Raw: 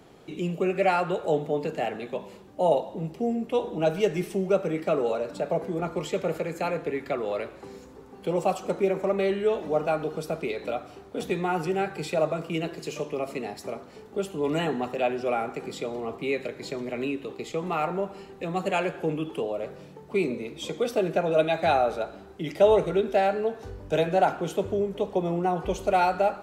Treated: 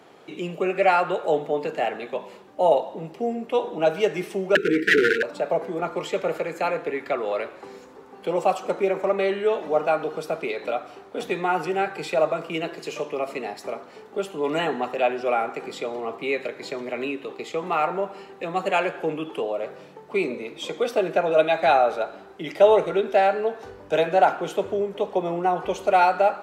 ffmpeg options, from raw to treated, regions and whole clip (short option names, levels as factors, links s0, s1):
-filter_complex "[0:a]asettb=1/sr,asplit=3[s0][s1][s2];[s0]atrim=end=4.554[s3];[s1]atrim=start=4.55:end=5.23,asetpts=PTS-STARTPTS,afade=t=in:d=0.004:c=qsin,afade=t=out:st=0.676:d=0.004:c=qsin,equalizer=f=560:w=0.39:g=12.5,aeval=exprs='0.251*(abs(mod(val(0)/0.251+3,4)-2)-1)':c=same,asuperstop=centerf=810:order=20:qfactor=0.83[s4];[s2]atrim=start=5.226[s5];[s3][s4]acrossfade=d=0.004:c1=hsin:c2=qsin[s6];[s6][s5]acrossfade=d=0.004:c1=qsin:c2=hsin,highpass=f=730:p=1,highshelf=f=3600:g=-10,volume=2.51"